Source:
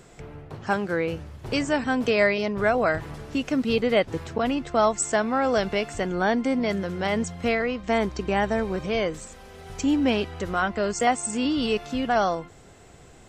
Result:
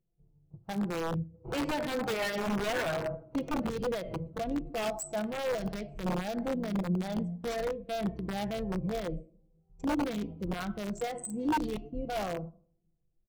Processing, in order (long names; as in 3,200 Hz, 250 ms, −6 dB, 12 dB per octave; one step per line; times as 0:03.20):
adaptive Wiener filter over 25 samples
high-shelf EQ 5,000 Hz +10 dB
noise gate −36 dBFS, range −12 dB
low-shelf EQ 120 Hz +7.5 dB
rectangular room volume 1,900 cubic metres, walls furnished, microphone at 0.92 metres
0:01.34–0:03.70: mid-hump overdrive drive 19 dB, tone 1,900 Hz, clips at −8.5 dBFS
comb filter 6.1 ms, depth 41%
brickwall limiter −16 dBFS, peak gain reduction 8.5 dB
wrap-around overflow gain 17.5 dB
every bin expanded away from the loudest bin 1.5 to 1
level −4.5 dB